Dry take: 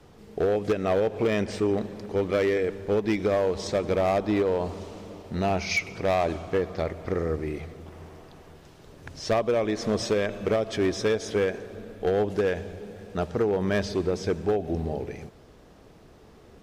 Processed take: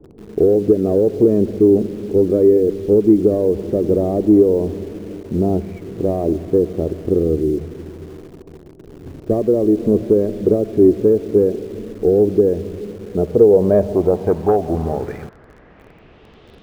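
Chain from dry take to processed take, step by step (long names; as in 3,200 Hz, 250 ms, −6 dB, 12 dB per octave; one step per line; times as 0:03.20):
low-pass filter sweep 360 Hz → 3,500 Hz, 0:13.01–0:16.53
in parallel at −10 dB: bit reduction 7 bits
on the sum: level +5.5 dB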